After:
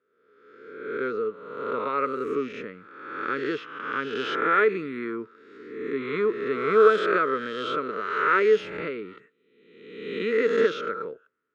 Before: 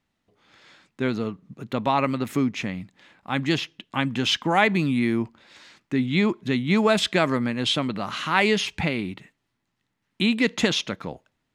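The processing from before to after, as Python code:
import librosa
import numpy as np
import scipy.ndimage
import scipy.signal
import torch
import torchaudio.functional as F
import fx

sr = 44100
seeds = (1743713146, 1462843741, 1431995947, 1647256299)

y = fx.spec_swells(x, sr, rise_s=1.15)
y = fx.double_bandpass(y, sr, hz=770.0, octaves=1.6)
y = y * librosa.db_to_amplitude(5.0)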